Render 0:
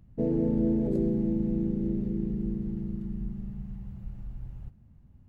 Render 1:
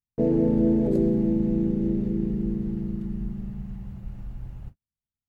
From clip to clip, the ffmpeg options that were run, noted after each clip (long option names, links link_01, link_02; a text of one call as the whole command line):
ffmpeg -i in.wav -af "lowshelf=frequency=280:gain=-5,agate=range=-46dB:threshold=-46dB:ratio=16:detection=peak,volume=7.5dB" out.wav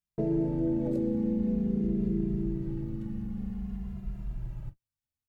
ffmpeg -i in.wav -filter_complex "[0:a]acompressor=threshold=-26dB:ratio=2.5,asplit=2[link_01][link_02];[link_02]adelay=2.5,afreqshift=-0.49[link_03];[link_01][link_03]amix=inputs=2:normalize=1,volume=2dB" out.wav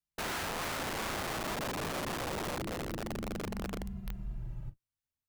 ffmpeg -i in.wav -filter_complex "[0:a]acrossover=split=210|460[link_01][link_02][link_03];[link_01]alimiter=level_in=6dB:limit=-24dB:level=0:latency=1:release=38,volume=-6dB[link_04];[link_04][link_02][link_03]amix=inputs=3:normalize=0,aeval=exprs='(mod(28.2*val(0)+1,2)-1)/28.2':channel_layout=same,volume=-2.5dB" out.wav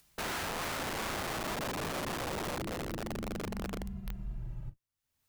ffmpeg -i in.wav -af "acompressor=mode=upward:threshold=-47dB:ratio=2.5" out.wav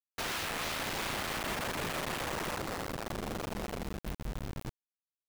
ffmpeg -i in.wav -af "acrusher=bits=5:mix=0:aa=0.000001,volume=-2dB" out.wav